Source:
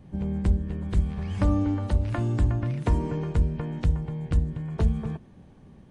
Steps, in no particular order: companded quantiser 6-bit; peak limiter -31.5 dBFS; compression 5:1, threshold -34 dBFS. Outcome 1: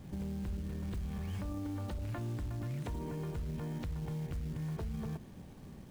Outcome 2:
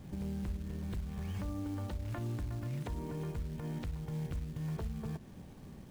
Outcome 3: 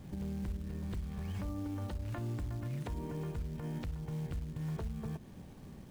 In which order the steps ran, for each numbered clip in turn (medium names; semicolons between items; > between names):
peak limiter > companded quantiser > compression; compression > peak limiter > companded quantiser; companded quantiser > compression > peak limiter